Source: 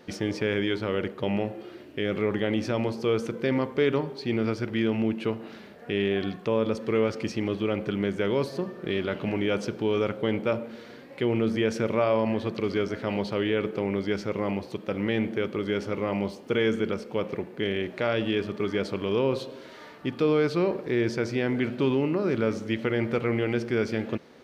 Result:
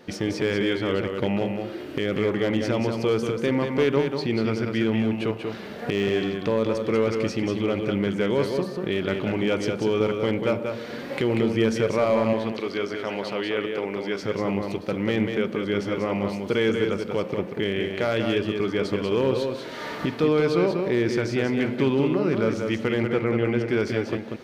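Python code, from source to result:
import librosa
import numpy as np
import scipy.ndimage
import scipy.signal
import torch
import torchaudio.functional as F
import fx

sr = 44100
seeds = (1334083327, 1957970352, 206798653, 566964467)

y = fx.recorder_agc(x, sr, target_db=-21.5, rise_db_per_s=21.0, max_gain_db=30)
y = fx.highpass(y, sr, hz=440.0, slope=6, at=(12.33, 14.23))
y = fx.high_shelf(y, sr, hz=3700.0, db=-8.5, at=(23.03, 23.69))
y = np.clip(y, -10.0 ** (-16.5 / 20.0), 10.0 ** (-16.5 / 20.0))
y = y + 10.0 ** (-5.5 / 20.0) * np.pad(y, (int(189 * sr / 1000.0), 0))[:len(y)]
y = F.gain(torch.from_numpy(y), 2.0).numpy()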